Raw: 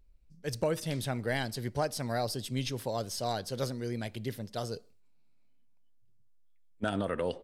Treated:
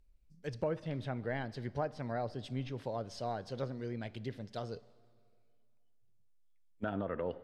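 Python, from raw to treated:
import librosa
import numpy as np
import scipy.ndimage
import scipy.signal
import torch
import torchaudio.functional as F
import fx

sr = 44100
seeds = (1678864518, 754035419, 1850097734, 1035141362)

y = fx.env_lowpass_down(x, sr, base_hz=1800.0, full_db=-29.0)
y = fx.rev_plate(y, sr, seeds[0], rt60_s=2.2, hf_ratio=0.9, predelay_ms=0, drr_db=19.5)
y = F.gain(torch.from_numpy(y), -4.5).numpy()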